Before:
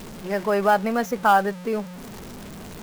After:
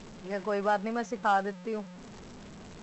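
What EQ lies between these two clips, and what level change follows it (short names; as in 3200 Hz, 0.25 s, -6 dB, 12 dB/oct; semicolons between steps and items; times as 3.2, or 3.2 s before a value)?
brick-wall FIR low-pass 8000 Hz; -8.5 dB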